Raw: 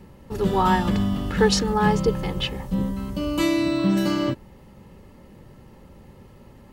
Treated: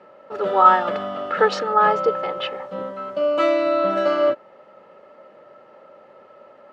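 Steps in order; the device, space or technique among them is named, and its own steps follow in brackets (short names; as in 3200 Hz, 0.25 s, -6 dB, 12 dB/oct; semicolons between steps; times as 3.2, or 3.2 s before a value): tin-can telephone (BPF 490–2900 Hz; small resonant body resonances 610/1300 Hz, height 15 dB, ringing for 25 ms); gain +1 dB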